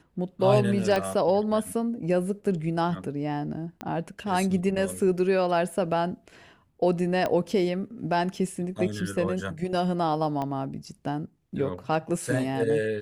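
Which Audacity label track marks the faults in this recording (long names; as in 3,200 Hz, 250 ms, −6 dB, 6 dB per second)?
0.960000	0.960000	click −13 dBFS
3.810000	3.810000	click −19 dBFS
7.260000	7.260000	click −14 dBFS
10.420000	10.420000	click −19 dBFS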